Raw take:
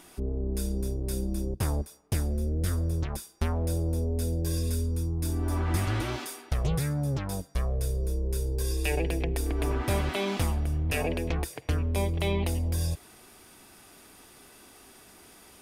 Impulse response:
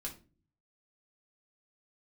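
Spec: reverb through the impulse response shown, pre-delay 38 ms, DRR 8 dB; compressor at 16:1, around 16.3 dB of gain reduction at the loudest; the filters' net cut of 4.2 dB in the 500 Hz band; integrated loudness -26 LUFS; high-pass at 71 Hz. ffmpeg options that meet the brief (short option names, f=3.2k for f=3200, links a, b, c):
-filter_complex "[0:a]highpass=71,equalizer=f=500:t=o:g=-5.5,acompressor=threshold=-41dB:ratio=16,asplit=2[a][b];[1:a]atrim=start_sample=2205,adelay=38[c];[b][c]afir=irnorm=-1:irlink=0,volume=-6.5dB[d];[a][d]amix=inputs=2:normalize=0,volume=19.5dB"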